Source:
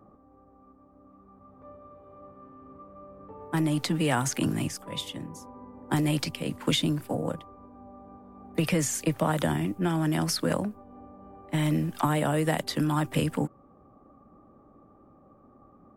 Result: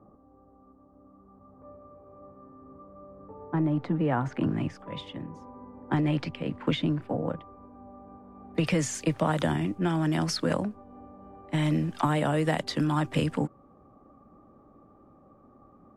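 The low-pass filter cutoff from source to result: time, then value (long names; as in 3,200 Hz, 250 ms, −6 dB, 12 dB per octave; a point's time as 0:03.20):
0:04.06 1,200 Hz
0:04.81 2,400 Hz
0:08.18 2,400 Hz
0:08.75 6,500 Hz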